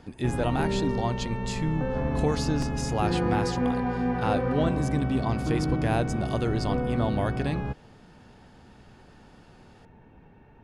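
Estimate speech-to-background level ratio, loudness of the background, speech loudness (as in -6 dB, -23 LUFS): -1.0 dB, -29.5 LUFS, -30.5 LUFS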